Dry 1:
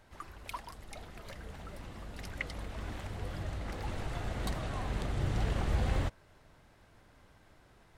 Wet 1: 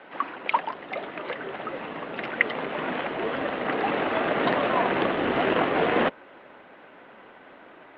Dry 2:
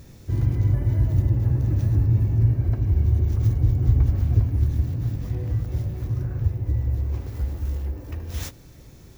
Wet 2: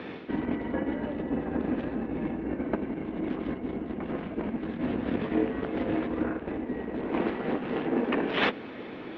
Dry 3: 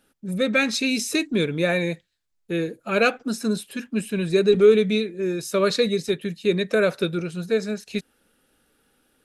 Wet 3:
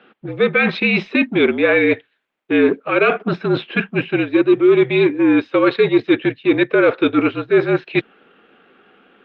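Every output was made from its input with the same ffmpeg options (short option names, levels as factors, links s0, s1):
-af "areverse,acompressor=threshold=0.0398:ratio=20,areverse,aeval=exprs='0.1*(cos(1*acos(clip(val(0)/0.1,-1,1)))-cos(1*PI/2))+0.00398*(cos(7*acos(clip(val(0)/0.1,-1,1)))-cos(7*PI/2))':c=same,highpass=f=300:t=q:w=0.5412,highpass=f=300:t=q:w=1.307,lowpass=f=3200:t=q:w=0.5176,lowpass=f=3200:t=q:w=0.7071,lowpass=f=3200:t=q:w=1.932,afreqshift=-53,alimiter=level_in=15.8:limit=0.891:release=50:level=0:latency=1,volume=0.668" -ar 48000 -c:a libopus -b:a 48k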